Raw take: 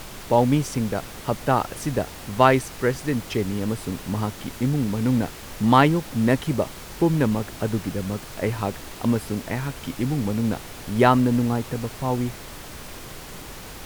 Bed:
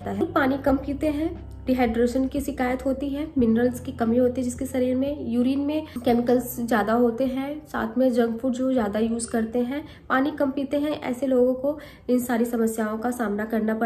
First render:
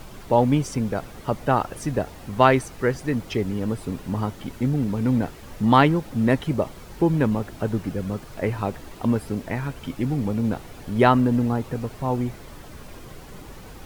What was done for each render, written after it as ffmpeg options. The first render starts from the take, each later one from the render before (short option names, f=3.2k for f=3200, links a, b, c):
-af "afftdn=nr=9:nf=-39"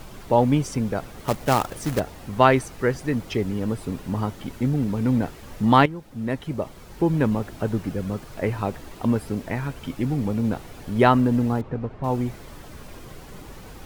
-filter_complex "[0:a]asettb=1/sr,asplit=3[a][b][c];[a]atrim=end=1.194[d];[b]atrim=start=1.19:end=2,asetpts=PTS-STARTPTS,afade=t=in:d=0.004:c=qsin,afade=t=out:st=0.806:d=0.004:c=qsin,acrusher=bits=2:mode=log:mix=0:aa=0.000001[e];[c]atrim=start=1.996[f];[d][e]acrossfade=d=0.004:c1=hsin:c2=qsin[g];[g][f]acrossfade=d=0.004:c1=qsin:c2=hsin,asettb=1/sr,asplit=3[h][i][j];[h]atrim=end=11.614[k];[i]atrim=start=11.61:end=12.04,asetpts=PTS-STARTPTS,afade=t=in:d=0.004:c=qsin,afade=t=out:st=0.426:d=0.004:c=qsin,adynamicsmooth=sensitivity=1:basefreq=1.9k[l];[j]atrim=start=12.036[m];[k][l]acrossfade=d=0.004:c1=hsin:c2=qsin[n];[n][m]acrossfade=d=0.004:c1=qsin:c2=hsin,asplit=2[o][p];[o]atrim=end=5.86,asetpts=PTS-STARTPTS,afade=t=out:st=5.856:d=0.004:c=hsin:silence=0.188365[q];[p]atrim=start=5.86,asetpts=PTS-STARTPTS,afade=t=in:d=1.41:silence=0.188365[r];[q][r]concat=n=2:v=0:a=1"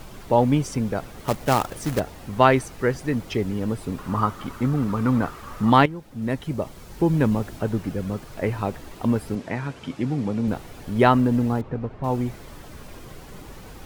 -filter_complex "[0:a]asettb=1/sr,asplit=3[a][b][c];[a]atrim=end=3.984[d];[b]atrim=start=3.98:end=5.7,asetpts=PTS-STARTPTS,afade=t=in:d=0.004:c=qsin,afade=t=out:st=1.716:d=0.004:c=qsin,equalizer=f=1.2k:t=o:w=0.56:g=15[e];[c]atrim=start=5.696[f];[d][e]acrossfade=d=0.004:c1=hsin:c2=qsin[g];[g][f]acrossfade=d=0.004:c1=qsin:c2=hsin,asettb=1/sr,asplit=3[h][i][j];[h]atrim=end=6.224[k];[i]atrim=start=6.22:end=7.59,asetpts=PTS-STARTPTS,afade=t=in:d=0.004:c=qsin,afade=t=out:st=1.366:d=0.004:c=qsin,bass=f=250:g=2,treble=f=4k:g=3[l];[j]atrim=start=7.586[m];[k][l]acrossfade=d=0.004:c1=hsin:c2=qsin[n];[n][m]acrossfade=d=0.004:c1=qsin:c2=hsin,asettb=1/sr,asplit=3[o][p][q];[o]atrim=end=9.354[r];[p]atrim=start=9.35:end=10.48,asetpts=PTS-STARTPTS,afade=t=in:d=0.004:c=qsin,afade=t=out:st=1.126:d=0.004:c=qsin,highpass=110,lowpass=7.6k[s];[q]atrim=start=10.476[t];[r][s]acrossfade=d=0.004:c1=hsin:c2=qsin[u];[u][t]acrossfade=d=0.004:c1=qsin:c2=hsin"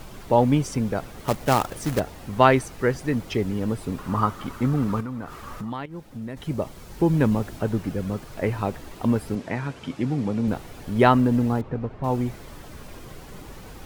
-filter_complex "[0:a]asettb=1/sr,asplit=3[a][b][c];[a]atrim=end=5.004[d];[b]atrim=start=5:end=6.37,asetpts=PTS-STARTPTS,afade=t=in:d=0.004:c=qsin,afade=t=out:st=1.366:d=0.004:c=qsin,acompressor=threshold=-30dB:ratio=5:attack=3.2:release=140:knee=1:detection=peak[e];[c]atrim=start=6.366[f];[d][e]acrossfade=d=0.004:c1=hsin:c2=qsin[g];[g][f]acrossfade=d=0.004:c1=qsin:c2=hsin"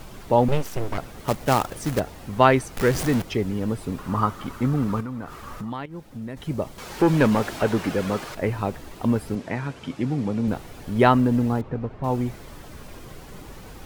-filter_complex "[0:a]asettb=1/sr,asplit=3[a][b][c];[a]atrim=end=0.484[d];[b]atrim=start=0.48:end=0.98,asetpts=PTS-STARTPTS,afade=t=in:d=0.004:c=qsin,afade=t=out:st=0.496:d=0.004:c=qsin,aeval=exprs='abs(val(0))':c=same[e];[c]atrim=start=0.976[f];[d][e]acrossfade=d=0.004:c1=hsin:c2=qsin[g];[g][f]acrossfade=d=0.004:c1=qsin:c2=hsin,asettb=1/sr,asplit=3[h][i][j];[h]atrim=end=2.774[k];[i]atrim=start=2.77:end=3.22,asetpts=PTS-STARTPTS,afade=t=in:d=0.004:c=qsin,afade=t=out:st=0.446:d=0.004:c=qsin,aeval=exprs='val(0)+0.5*0.0668*sgn(val(0))':c=same[l];[j]atrim=start=3.216[m];[k][l]acrossfade=d=0.004:c1=hsin:c2=qsin[n];[n][m]acrossfade=d=0.004:c1=qsin:c2=hsin,asettb=1/sr,asplit=3[o][p][q];[o]atrim=end=6.784[r];[p]atrim=start=6.78:end=8.35,asetpts=PTS-STARTPTS,afade=t=in:d=0.004:c=qsin,afade=t=out:st=1.566:d=0.004:c=qsin,asplit=2[s][t];[t]highpass=f=720:p=1,volume=18dB,asoftclip=type=tanh:threshold=-8dB[u];[s][u]amix=inputs=2:normalize=0,lowpass=f=5k:p=1,volume=-6dB[v];[q]atrim=start=8.346[w];[r][v]acrossfade=d=0.004:c1=hsin:c2=qsin[x];[x][w]acrossfade=d=0.004:c1=qsin:c2=hsin"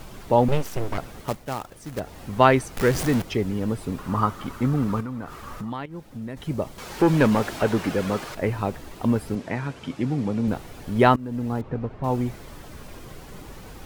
-filter_complex "[0:a]asplit=4[a][b][c][d];[a]atrim=end=1.43,asetpts=PTS-STARTPTS,afade=t=out:st=1.16:d=0.27:silence=0.298538[e];[b]atrim=start=1.43:end=1.92,asetpts=PTS-STARTPTS,volume=-10.5dB[f];[c]atrim=start=1.92:end=11.16,asetpts=PTS-STARTPTS,afade=t=in:d=0.27:silence=0.298538,afade=t=out:st=9.236:d=0.004:c=hsin:silence=0.0707946[g];[d]atrim=start=11.16,asetpts=PTS-STARTPTS,afade=t=in:d=0.57:silence=0.0707946[h];[e][f][g][h]concat=n=4:v=0:a=1"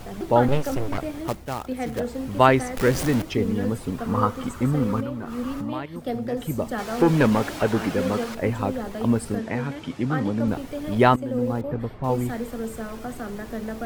-filter_complex "[1:a]volume=-8dB[a];[0:a][a]amix=inputs=2:normalize=0"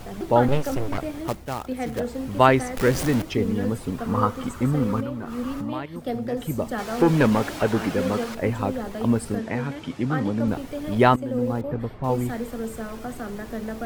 -af anull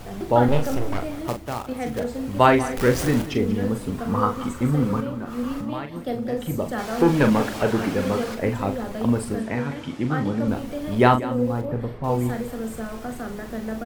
-filter_complex "[0:a]asplit=2[a][b];[b]adelay=41,volume=-7.5dB[c];[a][c]amix=inputs=2:normalize=0,aecho=1:1:186:0.158"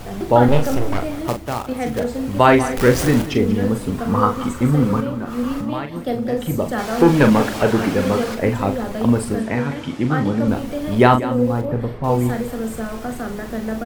-af "volume=5dB,alimiter=limit=-1dB:level=0:latency=1"